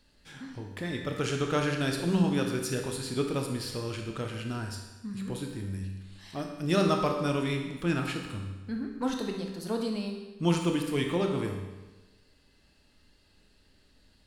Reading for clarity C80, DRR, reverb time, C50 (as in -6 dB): 6.5 dB, 2.0 dB, 1.2 s, 4.5 dB